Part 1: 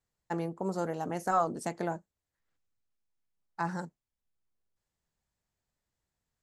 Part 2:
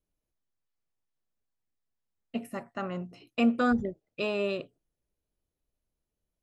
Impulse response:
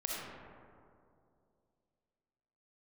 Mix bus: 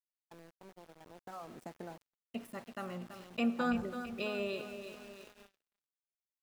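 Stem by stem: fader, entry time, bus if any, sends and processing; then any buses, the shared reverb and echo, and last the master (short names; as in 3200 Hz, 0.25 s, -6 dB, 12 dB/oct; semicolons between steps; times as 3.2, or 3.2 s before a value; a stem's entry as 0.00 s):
1.09 s -18 dB -> 1.45 s -9.5 dB, 0.00 s, send -15.5 dB, no echo send, high shelf 2400 Hz -8.5 dB; compressor 6:1, threshold -33 dBFS, peak gain reduction 9.5 dB
-9.0 dB, 0.00 s, send -16.5 dB, echo send -8.5 dB, high shelf 2200 Hz +4 dB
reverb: on, RT60 2.5 s, pre-delay 20 ms
echo: feedback echo 0.332 s, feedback 54%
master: sample gate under -52 dBFS; gate -56 dBFS, range -25 dB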